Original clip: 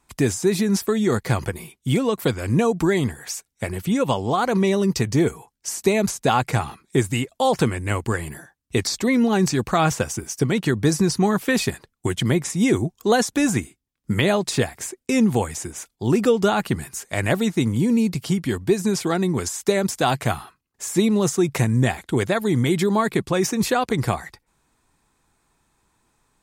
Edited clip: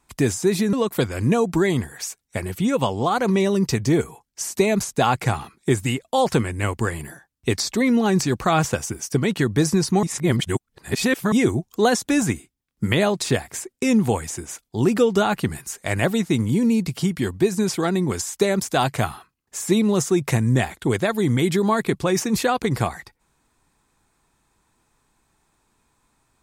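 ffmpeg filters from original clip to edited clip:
-filter_complex "[0:a]asplit=4[a][b][c][d];[a]atrim=end=0.732[e];[b]atrim=start=1.998:end=11.302[f];[c]atrim=start=11.298:end=12.592,asetpts=PTS-STARTPTS,areverse[g];[d]atrim=start=12.588[h];[e][f]acrossfade=d=0.004:c1=hsin:c2=hsin[i];[i][g]acrossfade=d=0.004:c1=hsin:c2=hsin[j];[j][h]acrossfade=d=0.004:c1=hsin:c2=hsin"

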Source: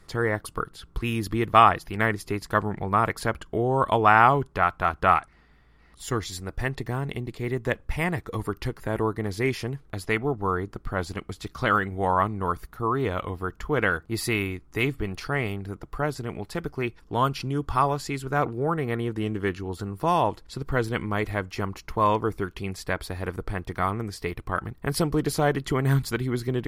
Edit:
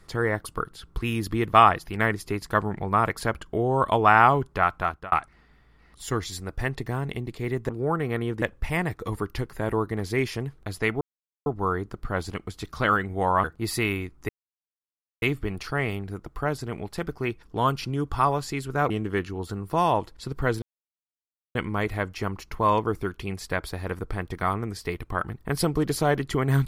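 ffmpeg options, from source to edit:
-filter_complex "[0:a]asplit=9[a][b][c][d][e][f][g][h][i];[a]atrim=end=5.12,asetpts=PTS-STARTPTS,afade=t=out:st=4.78:d=0.34[j];[b]atrim=start=5.12:end=7.692,asetpts=PTS-STARTPTS,afade=t=in:d=0.004:c=hsin[k];[c]atrim=start=18.468:end=19.202[l];[d]atrim=start=7.688:end=10.28,asetpts=PTS-STARTPTS,afade=t=out:st=2.588:d=0.004:c=hsin,apad=pad_dur=0.45[m];[e]atrim=start=10.28:end=12.262,asetpts=PTS-STARTPTS,afade=t=in:d=0.004:c=hsin[n];[f]atrim=start=13.938:end=14.79,asetpts=PTS-STARTPTS,afade=t=out:st=0.848:d=0.004:c=hsin,apad=pad_dur=0.93[o];[g]atrim=start=14.79:end=18.472,asetpts=PTS-STARTPTS,afade=t=in:d=0.004:c=hsin[p];[h]atrim=start=19.198:end=20.92,asetpts=PTS-STARTPTS,afade=t=out:st=1.718:d=0.004:c=hsin,apad=pad_dur=0.93[q];[i]atrim=start=20.92,asetpts=PTS-STARTPTS,afade=t=in:d=0.004:c=hsin[r];[j][k]concat=n=2:v=0:a=1[s];[s][l]acrossfade=d=0.004:c1=hsin:c2=hsin[t];[m][n]concat=n=2:v=0:a=1[u];[t][u]acrossfade=d=0.004:c1=hsin:c2=hsin[v];[o][p]concat=n=2:v=0:a=1[w];[v][w]acrossfade=d=0.004:c1=hsin:c2=hsin[x];[q][r]concat=n=2:v=0:a=1[y];[x][y]acrossfade=d=0.004:c1=hsin:c2=hsin"

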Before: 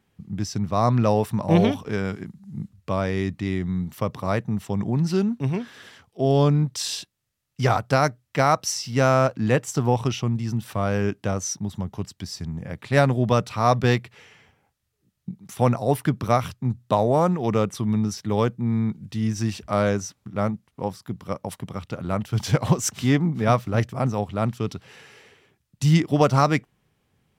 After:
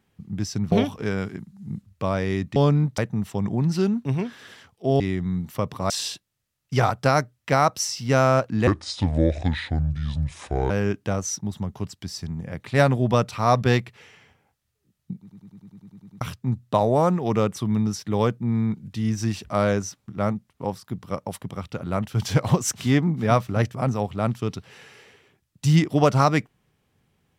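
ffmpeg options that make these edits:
-filter_complex "[0:a]asplit=18[a][b][c][d][e][f][g][h][i][j][k][l][m][n][o][p][q][r];[a]atrim=end=0.722[s];[b]atrim=start=1.588:end=3.432[t];[c]atrim=start=6.348:end=6.772[u];[d]atrim=start=4.328:end=6.352[v];[e]atrim=start=3.428:end=4.332[w];[f]atrim=start=6.768:end=9.544[x];[g]atrim=start=9.54:end=10.88,asetpts=PTS-STARTPTS,asetrate=29106,aresample=44100,atrim=end_sample=89536,asetpts=PTS-STARTPTS[y];[h]atrim=start=10.876:end=15.492[z];[i]atrim=start=15.388:end=15.492[aa];[j]atrim=start=15.388:end=15.492[ab];[k]atrim=start=15.388:end=15.492[ac];[l]atrim=start=15.388:end=15.492[ad];[m]atrim=start=15.388:end=15.492[ae];[n]atrim=start=15.388:end=15.492[af];[o]atrim=start=15.388:end=15.492[ag];[p]atrim=start=15.388:end=15.492[ah];[q]atrim=start=15.388:end=15.492[ai];[r]atrim=start=16.388[aj];[s][t]acrossfade=d=0.004:c1=hsin:c2=hsin[ak];[ak][u]acrossfade=d=0.004:c1=hsin:c2=hsin[al];[al][v]acrossfade=d=0.004:c1=hsin:c2=hsin[am];[am][w]acrossfade=d=0.004:c1=hsin:c2=hsin[an];[an][x]acrossfade=d=0.004:c1=hsin:c2=hsin[ao];[ao][y]acrossfade=d=0.004:c1=hsin:c2=hsin[ap];[ap][z]acrossfade=d=0.004:c1=hsin:c2=hsin[aq];[aq][aa]acrossfade=d=0.004:c1=hsin:c2=hsin[ar];[ar][ab]acrossfade=d=0.004:c1=hsin:c2=hsin[as];[as][ac]acrossfade=d=0.004:c1=hsin:c2=hsin[at];[at][ad]acrossfade=d=0.004:c1=hsin:c2=hsin[au];[au][ae]acrossfade=d=0.004:c1=hsin:c2=hsin[av];[av][af]acrossfade=d=0.004:c1=hsin:c2=hsin[aw];[aw][ag]acrossfade=d=0.004:c1=hsin:c2=hsin[ax];[ax][ah]acrossfade=d=0.004:c1=hsin:c2=hsin[ay];[ay][ai]acrossfade=d=0.004:c1=hsin:c2=hsin[az];[az][aj]acrossfade=d=0.004:c1=hsin:c2=hsin"

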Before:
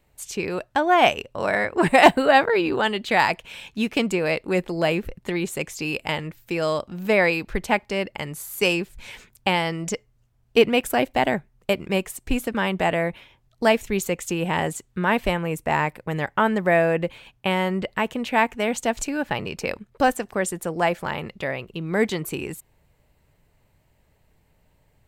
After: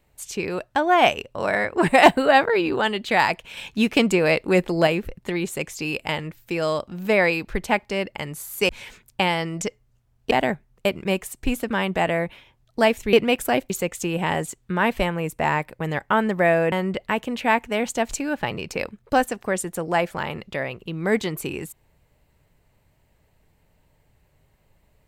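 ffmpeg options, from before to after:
-filter_complex "[0:a]asplit=8[a][b][c][d][e][f][g][h];[a]atrim=end=3.572[i];[b]atrim=start=3.568:end=4.872,asetpts=PTS-STARTPTS,volume=4dB[j];[c]atrim=start=4.868:end=8.692[k];[d]atrim=start=8.958:end=10.582[l];[e]atrim=start=11.148:end=13.972[m];[f]atrim=start=10.578:end=11.152[n];[g]atrim=start=13.968:end=16.992[o];[h]atrim=start=17.598[p];[i][j]acrossfade=d=0.004:c1=hsin:c2=hsin[q];[q][k]acrossfade=d=0.004:c1=hsin:c2=hsin[r];[r][l]acrossfade=d=0.004:c1=hsin:c2=hsin[s];[s][m]acrossfade=d=0.004:c1=hsin:c2=hsin[t];[t][n]acrossfade=d=0.004:c1=hsin:c2=hsin[u];[u][o]acrossfade=d=0.004:c1=hsin:c2=hsin[v];[v][p]acrossfade=d=0.004:c1=hsin:c2=hsin"

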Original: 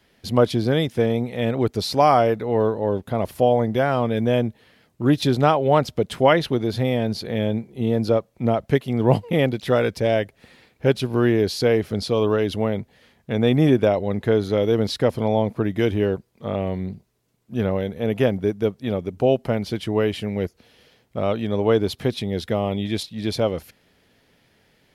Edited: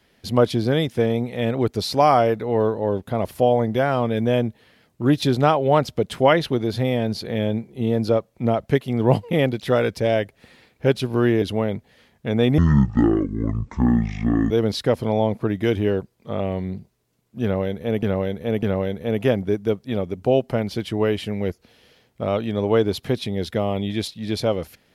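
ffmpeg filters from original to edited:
-filter_complex "[0:a]asplit=6[a][b][c][d][e][f];[a]atrim=end=11.422[g];[b]atrim=start=12.458:end=13.624[h];[c]atrim=start=13.62:end=14.66,asetpts=PTS-STARTPTS,asetrate=23814,aresample=44100,atrim=end_sample=84933,asetpts=PTS-STARTPTS[i];[d]atrim=start=14.656:end=18.182[j];[e]atrim=start=17.578:end=18.182[k];[f]atrim=start=17.578[l];[g][h]acrossfade=d=0.004:c1=hsin:c2=hsin[m];[m][i]acrossfade=d=0.004:c1=hsin:c2=hsin[n];[n][j]acrossfade=d=0.004:c1=hsin:c2=hsin[o];[o][k]acrossfade=d=0.004:c1=hsin:c2=hsin[p];[p][l]acrossfade=d=0.004:c1=hsin:c2=hsin"

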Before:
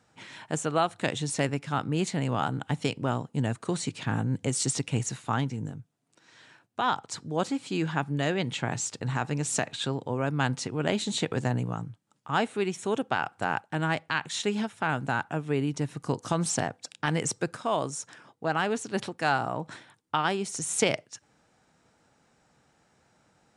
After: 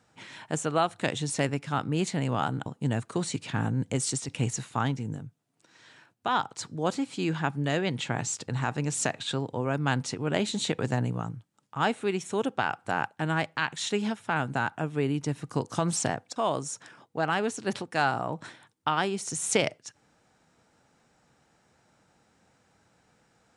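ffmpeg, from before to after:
-filter_complex "[0:a]asplit=4[a][b][c][d];[a]atrim=end=2.662[e];[b]atrim=start=3.188:end=4.81,asetpts=PTS-STARTPTS,afade=t=out:st=1.352:d=0.27:silence=0.421697[f];[c]atrim=start=4.81:end=16.892,asetpts=PTS-STARTPTS,afade=t=in:d=0.004:c=hsin:silence=0.421697[g];[d]atrim=start=17.628[h];[f][g]concat=n=2:v=0:a=1[i];[e][i]acrossfade=d=0.004:c1=hsin:c2=hsin[j];[j][h]acrossfade=d=0.004:c1=hsin:c2=hsin"

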